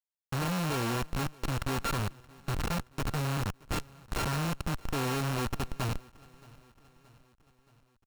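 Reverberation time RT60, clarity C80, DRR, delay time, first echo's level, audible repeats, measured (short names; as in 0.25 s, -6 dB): none, none, none, 0.624 s, -23.5 dB, 3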